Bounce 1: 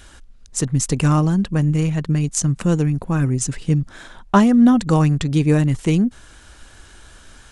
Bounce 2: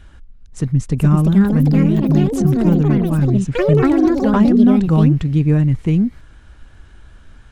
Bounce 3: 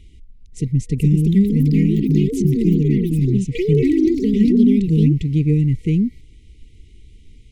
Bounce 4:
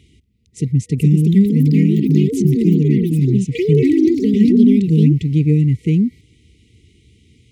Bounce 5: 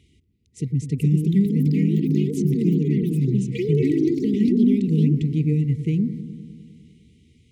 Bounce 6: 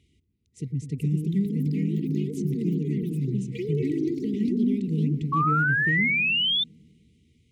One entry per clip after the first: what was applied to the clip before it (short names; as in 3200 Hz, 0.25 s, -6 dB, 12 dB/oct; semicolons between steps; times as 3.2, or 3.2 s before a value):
tone controls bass +9 dB, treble -12 dB; echoes that change speed 0.576 s, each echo +5 st, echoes 3; gain -4.5 dB
FFT band-reject 480–1900 Hz; gain -2 dB
HPF 81 Hz 24 dB/oct; gain +2.5 dB
dark delay 0.101 s, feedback 73%, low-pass 710 Hz, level -11.5 dB; gain -7 dB
thin delay 0.533 s, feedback 69%, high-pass 3900 Hz, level -20.5 dB; painted sound rise, 5.32–6.64, 1100–3600 Hz -17 dBFS; gain -6.5 dB